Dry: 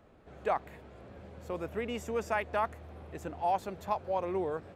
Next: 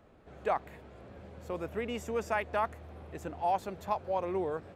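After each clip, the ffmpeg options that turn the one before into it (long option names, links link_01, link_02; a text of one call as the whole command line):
ffmpeg -i in.wav -af anull out.wav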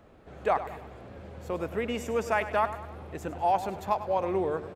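ffmpeg -i in.wav -af "aecho=1:1:100|200|300|400|500:0.224|0.114|0.0582|0.0297|0.0151,volume=4.5dB" out.wav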